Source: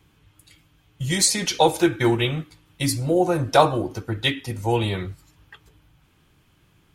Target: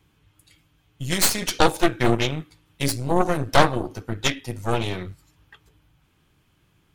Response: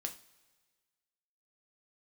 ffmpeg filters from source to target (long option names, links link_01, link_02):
-af "aeval=exprs='0.841*(cos(1*acos(clip(val(0)/0.841,-1,1)))-cos(1*PI/2))+0.299*(cos(4*acos(clip(val(0)/0.841,-1,1)))-cos(4*PI/2))+0.0841*(cos(8*acos(clip(val(0)/0.841,-1,1)))-cos(8*PI/2))':channel_layout=same,volume=-3.5dB"